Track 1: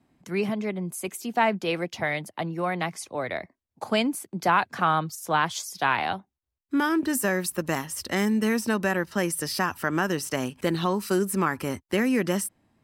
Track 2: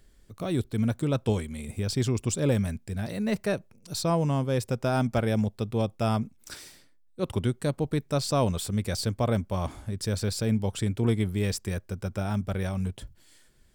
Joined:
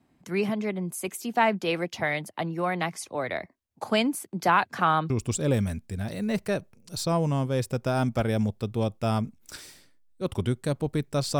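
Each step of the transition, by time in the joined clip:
track 1
0:05.10: continue with track 2 from 0:02.08

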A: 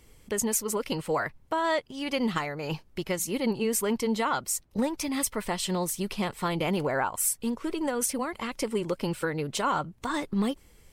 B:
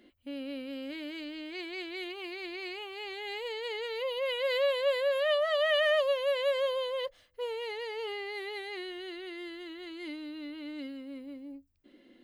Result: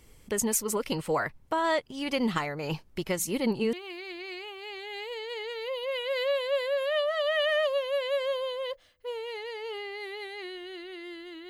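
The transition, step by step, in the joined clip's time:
A
0:03.73: continue with B from 0:02.07

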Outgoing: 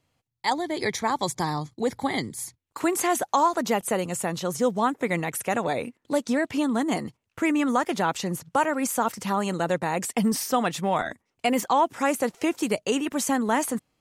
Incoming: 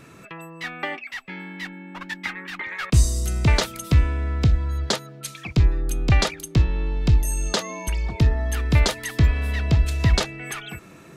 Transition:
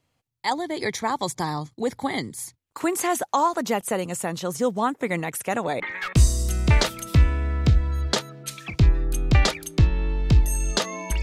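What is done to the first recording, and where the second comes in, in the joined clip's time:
outgoing
0:05.80: continue with incoming from 0:02.57

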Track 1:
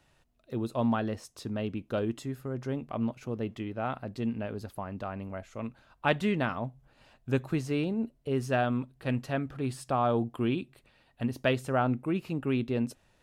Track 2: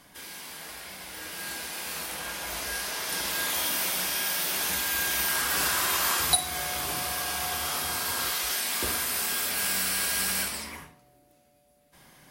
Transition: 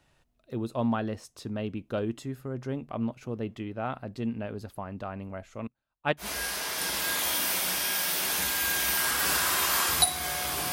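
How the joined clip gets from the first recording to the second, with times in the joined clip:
track 1
0:05.67–0:06.29: expander for the loud parts 2.5 to 1, over −39 dBFS
0:06.23: continue with track 2 from 0:02.54, crossfade 0.12 s

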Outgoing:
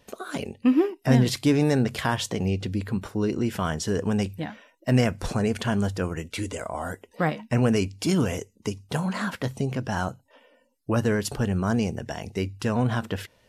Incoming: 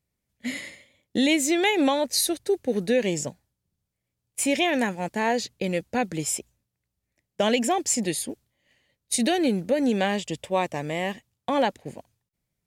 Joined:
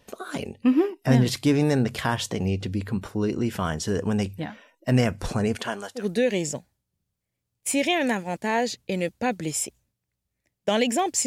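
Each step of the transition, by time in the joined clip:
outgoing
0:05.55–0:06.06: high-pass filter 220 Hz → 1,400 Hz
0:06.00: continue with incoming from 0:02.72, crossfade 0.12 s

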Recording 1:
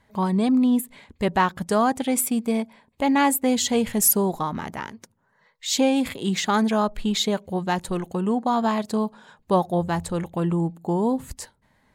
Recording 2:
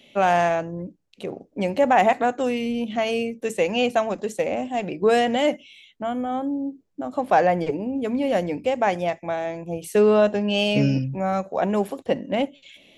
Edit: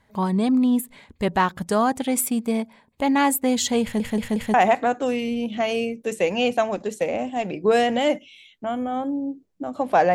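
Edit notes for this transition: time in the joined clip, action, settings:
recording 1
0:03.82: stutter in place 0.18 s, 4 plays
0:04.54: continue with recording 2 from 0:01.92

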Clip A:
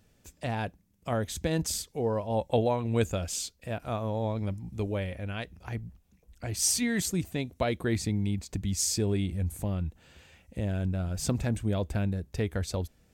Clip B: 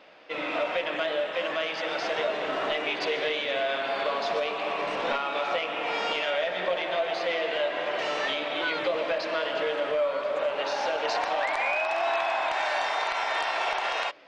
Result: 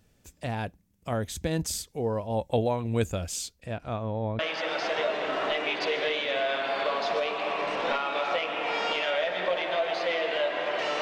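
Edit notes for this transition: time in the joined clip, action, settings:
clip A
0:03.60–0:04.39: low-pass filter 9,100 Hz → 1,800 Hz
0:04.39: continue with clip B from 0:01.59

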